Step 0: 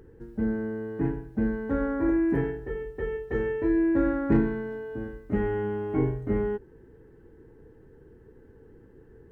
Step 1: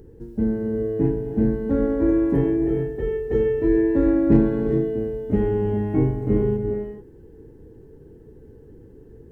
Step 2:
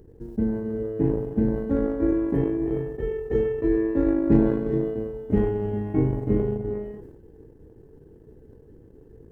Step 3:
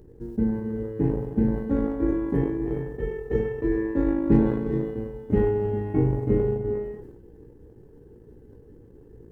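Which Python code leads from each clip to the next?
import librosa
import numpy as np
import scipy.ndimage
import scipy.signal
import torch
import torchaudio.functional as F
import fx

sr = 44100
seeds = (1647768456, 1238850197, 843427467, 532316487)

y1 = fx.peak_eq(x, sr, hz=1500.0, db=-12.5, octaves=1.6)
y1 = fx.rev_gated(y1, sr, seeds[0], gate_ms=460, shape='rising', drr_db=5.0)
y1 = y1 * librosa.db_to_amplitude(6.5)
y2 = fx.transient(y1, sr, attack_db=4, sustain_db=-12)
y2 = fx.sustainer(y2, sr, db_per_s=48.0)
y2 = y2 * librosa.db_to_amplitude(-4.5)
y3 = fx.notch(y2, sr, hz=660.0, q=12.0)
y3 = fx.doubler(y3, sr, ms=17.0, db=-8.0)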